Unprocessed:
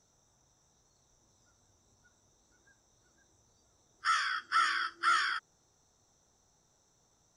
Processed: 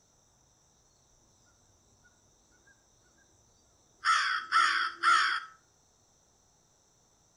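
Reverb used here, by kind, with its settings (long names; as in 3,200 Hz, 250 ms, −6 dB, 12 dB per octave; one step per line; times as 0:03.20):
comb and all-pass reverb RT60 0.49 s, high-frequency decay 0.6×, pre-delay 10 ms, DRR 13.5 dB
level +3.5 dB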